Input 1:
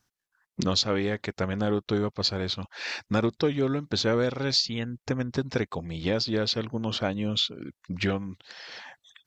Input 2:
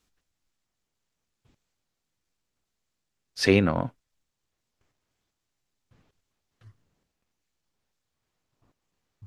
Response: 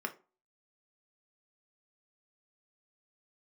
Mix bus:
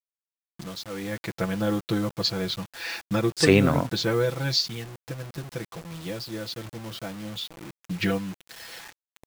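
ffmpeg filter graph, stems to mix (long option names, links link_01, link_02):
-filter_complex "[0:a]equalizer=frequency=110:width=1.2:gain=5.5,aecho=1:1:6:0.87,volume=-1dB,afade=type=in:start_time=0.91:duration=0.27:silence=0.398107,afade=type=out:start_time=4.62:duration=0.26:silence=0.354813,afade=type=in:start_time=7.47:duration=0.56:silence=0.354813,asplit=2[link_01][link_02];[link_02]volume=-22dB[link_03];[1:a]equalizer=frequency=7900:width=4:gain=14.5,volume=-5dB[link_04];[2:a]atrim=start_sample=2205[link_05];[link_03][link_05]afir=irnorm=-1:irlink=0[link_06];[link_01][link_04][link_06]amix=inputs=3:normalize=0,dynaudnorm=framelen=420:gausssize=5:maxgain=8dB,acrusher=bits=6:mix=0:aa=0.000001"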